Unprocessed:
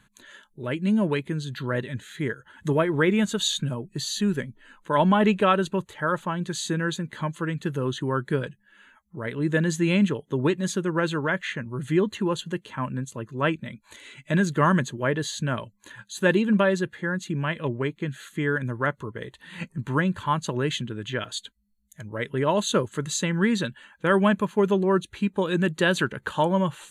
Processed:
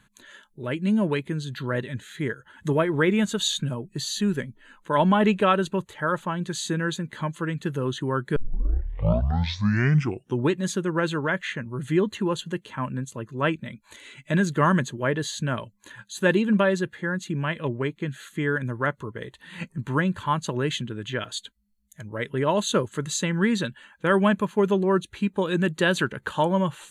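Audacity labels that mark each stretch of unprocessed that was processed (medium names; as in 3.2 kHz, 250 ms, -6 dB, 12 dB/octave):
8.360000	8.360000	tape start 2.14 s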